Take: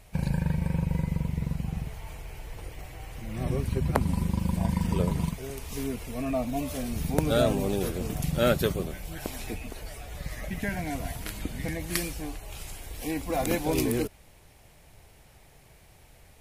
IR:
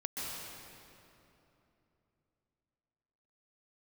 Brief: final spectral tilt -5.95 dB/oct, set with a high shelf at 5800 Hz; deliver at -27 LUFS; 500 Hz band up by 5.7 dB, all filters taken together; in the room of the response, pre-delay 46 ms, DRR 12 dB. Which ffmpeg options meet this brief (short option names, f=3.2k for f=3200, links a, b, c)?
-filter_complex "[0:a]equalizer=f=500:t=o:g=7,highshelf=f=5.8k:g=3,asplit=2[a][b];[1:a]atrim=start_sample=2205,adelay=46[c];[b][c]afir=irnorm=-1:irlink=0,volume=-15dB[d];[a][d]amix=inputs=2:normalize=0"